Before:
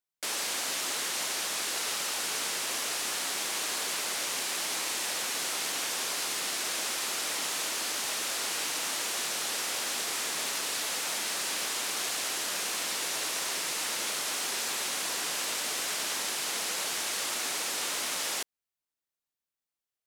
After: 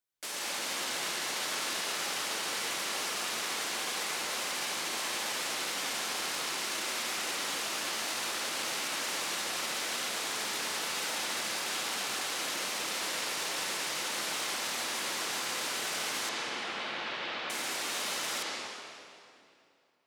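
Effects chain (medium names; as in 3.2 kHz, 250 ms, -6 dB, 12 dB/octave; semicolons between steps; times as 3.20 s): peak limiter -29 dBFS, peak gain reduction 10 dB; 16.29–17.50 s: low-pass 3.7 kHz 24 dB/octave; reverberation RT60 2.6 s, pre-delay 78 ms, DRR -5 dB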